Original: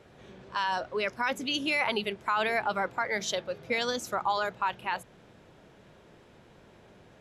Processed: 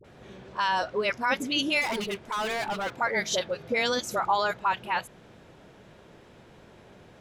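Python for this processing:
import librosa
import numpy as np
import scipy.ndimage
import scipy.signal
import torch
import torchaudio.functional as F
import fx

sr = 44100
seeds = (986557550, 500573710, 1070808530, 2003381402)

y = fx.overload_stage(x, sr, gain_db=31.0, at=(1.77, 2.93))
y = fx.dispersion(y, sr, late='highs', ms=45.0, hz=680.0)
y = F.gain(torch.from_numpy(y), 3.5).numpy()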